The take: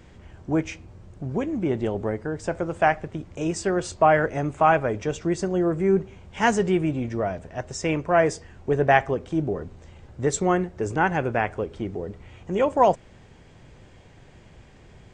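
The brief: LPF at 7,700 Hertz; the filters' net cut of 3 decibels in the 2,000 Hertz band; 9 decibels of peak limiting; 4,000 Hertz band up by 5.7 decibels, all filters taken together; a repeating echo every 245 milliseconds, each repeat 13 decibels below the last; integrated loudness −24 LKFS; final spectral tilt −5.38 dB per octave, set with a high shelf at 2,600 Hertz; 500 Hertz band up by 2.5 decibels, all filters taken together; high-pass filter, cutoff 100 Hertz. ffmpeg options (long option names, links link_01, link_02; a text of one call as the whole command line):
ffmpeg -i in.wav -af "highpass=100,lowpass=7700,equalizer=frequency=500:width_type=o:gain=3.5,equalizer=frequency=2000:width_type=o:gain=-7.5,highshelf=frequency=2600:gain=3.5,equalizer=frequency=4000:width_type=o:gain=8.5,alimiter=limit=-12.5dB:level=0:latency=1,aecho=1:1:245|490|735:0.224|0.0493|0.0108,volume=1dB" out.wav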